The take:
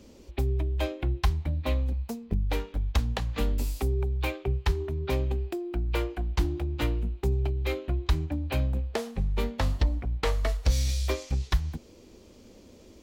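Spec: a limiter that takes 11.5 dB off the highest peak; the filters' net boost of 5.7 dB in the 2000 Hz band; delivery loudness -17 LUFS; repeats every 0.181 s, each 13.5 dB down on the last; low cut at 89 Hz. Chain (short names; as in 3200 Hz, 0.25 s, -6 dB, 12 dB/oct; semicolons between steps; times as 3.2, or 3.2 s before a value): HPF 89 Hz; bell 2000 Hz +7 dB; limiter -23.5 dBFS; feedback echo 0.181 s, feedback 21%, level -13.5 dB; gain +18 dB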